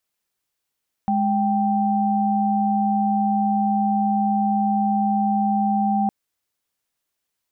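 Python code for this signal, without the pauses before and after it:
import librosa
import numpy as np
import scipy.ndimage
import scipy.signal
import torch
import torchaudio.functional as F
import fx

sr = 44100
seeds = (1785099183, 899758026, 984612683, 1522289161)

y = fx.chord(sr, length_s=5.01, notes=(56, 79), wave='sine', level_db=-20.0)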